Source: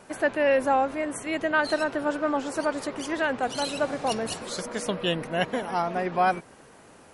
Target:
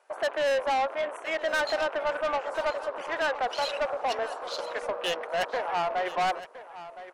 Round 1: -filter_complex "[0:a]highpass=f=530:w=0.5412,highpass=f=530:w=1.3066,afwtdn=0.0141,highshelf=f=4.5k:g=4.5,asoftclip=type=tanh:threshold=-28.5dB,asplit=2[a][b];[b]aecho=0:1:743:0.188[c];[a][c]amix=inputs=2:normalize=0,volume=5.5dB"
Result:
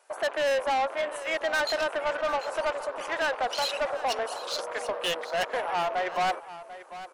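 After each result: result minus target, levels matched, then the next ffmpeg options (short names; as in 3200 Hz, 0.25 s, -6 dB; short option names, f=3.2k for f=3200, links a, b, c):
echo 0.272 s early; 8000 Hz band +4.5 dB
-filter_complex "[0:a]highpass=f=530:w=0.5412,highpass=f=530:w=1.3066,afwtdn=0.0141,highshelf=f=4.5k:g=4.5,asoftclip=type=tanh:threshold=-28.5dB,asplit=2[a][b];[b]aecho=0:1:1015:0.188[c];[a][c]amix=inputs=2:normalize=0,volume=5.5dB"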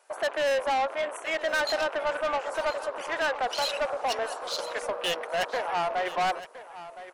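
8000 Hz band +4.5 dB
-filter_complex "[0:a]highpass=f=530:w=0.5412,highpass=f=530:w=1.3066,afwtdn=0.0141,highshelf=f=4.5k:g=-7.5,asoftclip=type=tanh:threshold=-28.5dB,asplit=2[a][b];[b]aecho=0:1:1015:0.188[c];[a][c]amix=inputs=2:normalize=0,volume=5.5dB"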